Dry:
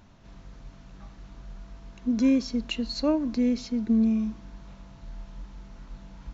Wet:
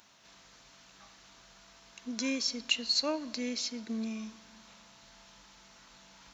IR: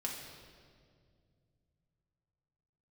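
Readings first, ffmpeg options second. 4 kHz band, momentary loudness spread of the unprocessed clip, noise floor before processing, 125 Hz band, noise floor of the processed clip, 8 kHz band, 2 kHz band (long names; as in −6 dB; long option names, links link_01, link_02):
+6.0 dB, 22 LU, −50 dBFS, below −15 dB, −59 dBFS, can't be measured, +3.0 dB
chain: -filter_complex "[0:a]highpass=frequency=1300:poles=1,highshelf=frequency=3400:gain=10,asplit=2[link_01][link_02];[1:a]atrim=start_sample=2205[link_03];[link_02][link_03]afir=irnorm=-1:irlink=0,volume=-19dB[link_04];[link_01][link_04]amix=inputs=2:normalize=0"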